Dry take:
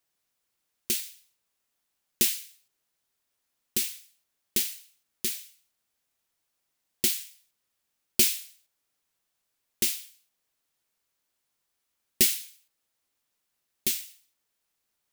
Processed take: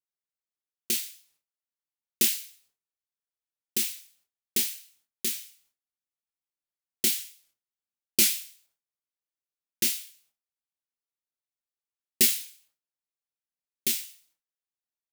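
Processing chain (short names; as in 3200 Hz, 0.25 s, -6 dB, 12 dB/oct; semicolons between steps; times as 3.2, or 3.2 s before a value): gate with hold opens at -59 dBFS; doubler 26 ms -6 dB; record warp 78 rpm, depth 160 cents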